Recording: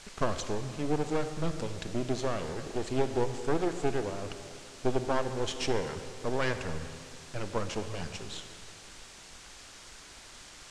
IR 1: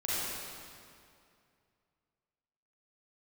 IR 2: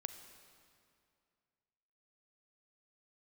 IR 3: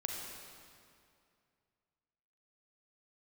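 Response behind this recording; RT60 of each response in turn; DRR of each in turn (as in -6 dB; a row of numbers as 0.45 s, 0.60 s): 2; 2.4 s, 2.4 s, 2.4 s; -9.5 dB, 8.5 dB, 0.0 dB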